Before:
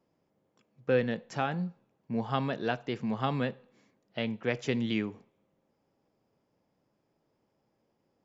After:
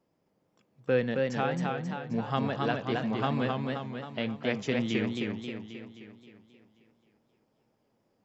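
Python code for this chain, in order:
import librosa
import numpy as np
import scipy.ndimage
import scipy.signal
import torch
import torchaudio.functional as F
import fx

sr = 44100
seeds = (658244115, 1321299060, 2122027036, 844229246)

y = fx.echo_warbled(x, sr, ms=265, feedback_pct=54, rate_hz=2.8, cents=109, wet_db=-3)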